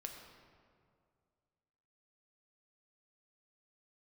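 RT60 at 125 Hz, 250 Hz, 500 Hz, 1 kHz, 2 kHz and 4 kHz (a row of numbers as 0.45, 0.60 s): 2.5, 2.3, 2.3, 2.1, 1.6, 1.2 s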